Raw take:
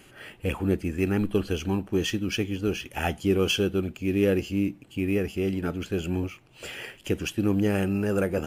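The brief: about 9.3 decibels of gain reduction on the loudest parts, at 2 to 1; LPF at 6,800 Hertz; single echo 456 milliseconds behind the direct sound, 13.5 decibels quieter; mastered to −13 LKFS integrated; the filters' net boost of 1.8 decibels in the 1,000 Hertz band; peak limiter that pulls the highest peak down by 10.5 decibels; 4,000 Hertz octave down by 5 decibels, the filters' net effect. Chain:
low-pass filter 6,800 Hz
parametric band 1,000 Hz +3 dB
parametric band 4,000 Hz −7.5 dB
downward compressor 2 to 1, threshold −36 dBFS
brickwall limiter −30 dBFS
single-tap delay 456 ms −13.5 dB
level +26.5 dB

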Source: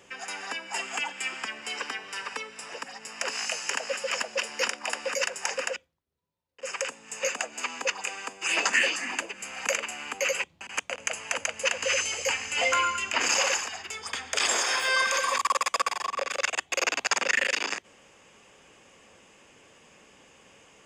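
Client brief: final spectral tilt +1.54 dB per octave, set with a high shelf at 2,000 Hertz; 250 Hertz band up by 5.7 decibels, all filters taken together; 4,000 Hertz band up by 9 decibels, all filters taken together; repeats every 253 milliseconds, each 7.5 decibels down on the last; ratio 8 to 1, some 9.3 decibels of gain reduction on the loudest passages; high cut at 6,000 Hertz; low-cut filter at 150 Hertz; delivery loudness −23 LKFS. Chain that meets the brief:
high-pass filter 150 Hz
low-pass filter 6,000 Hz
parametric band 250 Hz +7.5 dB
high-shelf EQ 2,000 Hz +7 dB
parametric band 4,000 Hz +6.5 dB
downward compressor 8 to 1, threshold −24 dBFS
repeating echo 253 ms, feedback 42%, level −7.5 dB
level +4 dB

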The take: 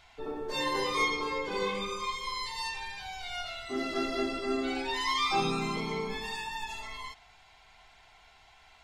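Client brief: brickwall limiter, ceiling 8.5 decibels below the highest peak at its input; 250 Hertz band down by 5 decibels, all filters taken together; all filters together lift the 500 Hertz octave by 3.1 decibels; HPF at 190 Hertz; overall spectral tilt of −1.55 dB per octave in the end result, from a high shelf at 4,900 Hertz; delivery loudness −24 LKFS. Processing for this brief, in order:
high-pass filter 190 Hz
parametric band 250 Hz −8.5 dB
parametric band 500 Hz +7 dB
high-shelf EQ 4,900 Hz +8.5 dB
level +8.5 dB
brickwall limiter −14.5 dBFS

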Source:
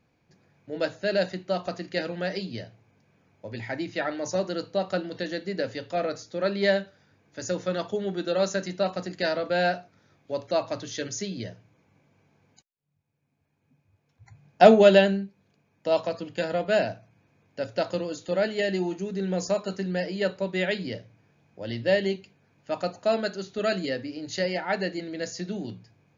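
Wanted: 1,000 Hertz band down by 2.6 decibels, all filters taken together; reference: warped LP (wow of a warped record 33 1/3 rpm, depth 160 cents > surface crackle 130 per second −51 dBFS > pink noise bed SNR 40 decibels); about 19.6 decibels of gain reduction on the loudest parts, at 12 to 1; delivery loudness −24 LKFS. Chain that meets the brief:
parametric band 1,000 Hz −4.5 dB
downward compressor 12 to 1, threshold −30 dBFS
wow of a warped record 33 1/3 rpm, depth 160 cents
surface crackle 130 per second −51 dBFS
pink noise bed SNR 40 dB
level +12 dB

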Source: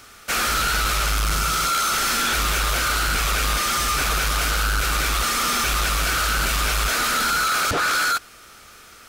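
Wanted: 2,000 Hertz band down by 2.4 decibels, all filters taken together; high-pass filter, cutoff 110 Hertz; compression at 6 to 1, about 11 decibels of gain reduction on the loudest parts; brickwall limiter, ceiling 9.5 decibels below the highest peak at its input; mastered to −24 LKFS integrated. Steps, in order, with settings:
high-pass filter 110 Hz
parametric band 2,000 Hz −3.5 dB
downward compressor 6 to 1, threshold −33 dBFS
level +14.5 dB
brickwall limiter −18.5 dBFS

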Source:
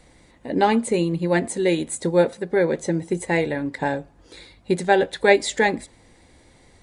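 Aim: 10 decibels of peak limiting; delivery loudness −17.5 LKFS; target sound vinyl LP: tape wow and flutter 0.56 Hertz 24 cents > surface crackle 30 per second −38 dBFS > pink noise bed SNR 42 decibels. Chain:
brickwall limiter −11.5 dBFS
tape wow and flutter 0.56 Hz 24 cents
surface crackle 30 per second −38 dBFS
pink noise bed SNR 42 dB
level +6.5 dB

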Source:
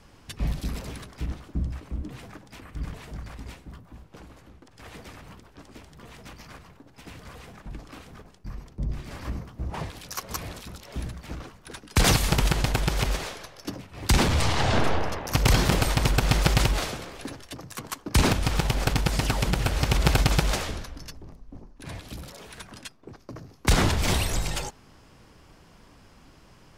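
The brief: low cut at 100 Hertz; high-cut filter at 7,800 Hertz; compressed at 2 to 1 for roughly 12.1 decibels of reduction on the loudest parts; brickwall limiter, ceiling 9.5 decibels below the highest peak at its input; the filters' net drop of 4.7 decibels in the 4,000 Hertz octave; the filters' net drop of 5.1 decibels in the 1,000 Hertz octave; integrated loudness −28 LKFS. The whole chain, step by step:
high-pass filter 100 Hz
low-pass filter 7,800 Hz
parametric band 1,000 Hz −6.5 dB
parametric band 4,000 Hz −5.5 dB
downward compressor 2 to 1, threshold −42 dBFS
level +15.5 dB
brickwall limiter −13 dBFS

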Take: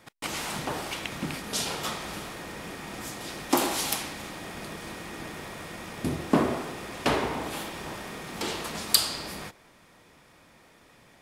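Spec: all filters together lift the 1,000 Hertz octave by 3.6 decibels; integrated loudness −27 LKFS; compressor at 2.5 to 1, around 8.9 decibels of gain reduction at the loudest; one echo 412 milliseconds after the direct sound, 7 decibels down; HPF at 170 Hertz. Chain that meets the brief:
high-pass filter 170 Hz
parametric band 1,000 Hz +4.5 dB
downward compressor 2.5 to 1, threshold −31 dBFS
single-tap delay 412 ms −7 dB
level +7 dB

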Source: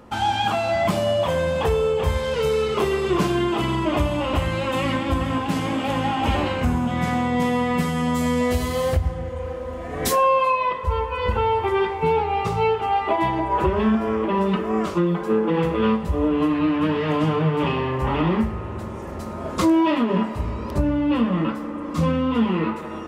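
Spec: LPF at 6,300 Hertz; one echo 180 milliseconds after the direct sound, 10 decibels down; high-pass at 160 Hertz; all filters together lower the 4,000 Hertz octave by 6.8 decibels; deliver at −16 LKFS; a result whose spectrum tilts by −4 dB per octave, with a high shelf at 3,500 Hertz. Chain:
high-pass filter 160 Hz
low-pass filter 6,300 Hz
high-shelf EQ 3,500 Hz −7 dB
parametric band 4,000 Hz −5 dB
single-tap delay 180 ms −10 dB
level +7 dB

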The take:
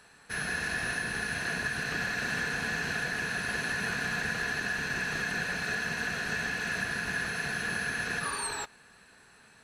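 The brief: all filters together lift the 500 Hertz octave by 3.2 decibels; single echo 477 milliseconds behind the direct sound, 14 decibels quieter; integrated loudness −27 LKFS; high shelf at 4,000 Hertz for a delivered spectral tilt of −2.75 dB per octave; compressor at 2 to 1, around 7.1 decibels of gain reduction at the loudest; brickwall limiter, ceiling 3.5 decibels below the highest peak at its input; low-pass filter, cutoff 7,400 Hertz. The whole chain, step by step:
low-pass filter 7,400 Hz
parametric band 500 Hz +4 dB
high-shelf EQ 4,000 Hz +3 dB
downward compressor 2 to 1, threshold −41 dBFS
brickwall limiter −30.5 dBFS
single-tap delay 477 ms −14 dB
level +11.5 dB

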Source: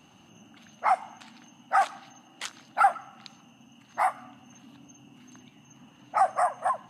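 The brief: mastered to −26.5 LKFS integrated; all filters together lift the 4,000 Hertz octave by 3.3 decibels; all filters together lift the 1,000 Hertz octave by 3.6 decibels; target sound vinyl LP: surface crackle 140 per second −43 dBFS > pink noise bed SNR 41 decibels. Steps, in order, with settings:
parametric band 1,000 Hz +5 dB
parametric band 4,000 Hz +4 dB
surface crackle 140 per second −43 dBFS
pink noise bed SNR 41 dB
level −2.5 dB

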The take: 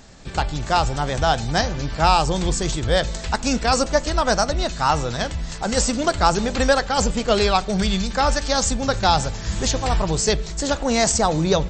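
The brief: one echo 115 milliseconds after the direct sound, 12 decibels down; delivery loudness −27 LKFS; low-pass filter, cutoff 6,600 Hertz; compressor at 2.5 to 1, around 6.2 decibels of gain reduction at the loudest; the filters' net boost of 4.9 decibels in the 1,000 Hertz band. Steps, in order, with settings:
low-pass filter 6,600 Hz
parametric band 1,000 Hz +6.5 dB
downward compressor 2.5 to 1, threshold −17 dBFS
single-tap delay 115 ms −12 dB
level −5.5 dB

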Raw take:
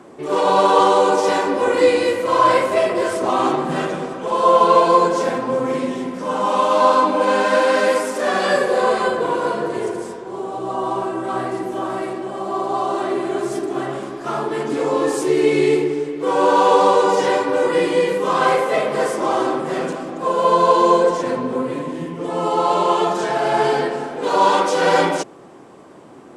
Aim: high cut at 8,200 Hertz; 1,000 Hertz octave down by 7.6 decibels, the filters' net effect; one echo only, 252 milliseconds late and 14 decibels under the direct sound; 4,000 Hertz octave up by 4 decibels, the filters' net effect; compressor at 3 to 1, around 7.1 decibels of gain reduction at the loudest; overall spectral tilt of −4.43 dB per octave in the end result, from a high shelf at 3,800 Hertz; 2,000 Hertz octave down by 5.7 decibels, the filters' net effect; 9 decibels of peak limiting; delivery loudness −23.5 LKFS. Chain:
low-pass filter 8,200 Hz
parametric band 1,000 Hz −8 dB
parametric band 2,000 Hz −6.5 dB
high-shelf EQ 3,800 Hz +3 dB
parametric band 4,000 Hz +6 dB
downward compressor 3 to 1, threshold −22 dBFS
brickwall limiter −21.5 dBFS
single-tap delay 252 ms −14 dB
level +6 dB

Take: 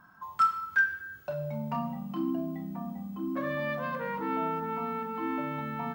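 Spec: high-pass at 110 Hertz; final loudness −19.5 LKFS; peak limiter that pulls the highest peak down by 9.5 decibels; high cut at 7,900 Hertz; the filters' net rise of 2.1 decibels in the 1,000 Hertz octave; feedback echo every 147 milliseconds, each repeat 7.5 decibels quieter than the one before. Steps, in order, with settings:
high-pass filter 110 Hz
low-pass filter 7,900 Hz
parametric band 1,000 Hz +3 dB
brickwall limiter −23.5 dBFS
repeating echo 147 ms, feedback 42%, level −7.5 dB
level +13.5 dB

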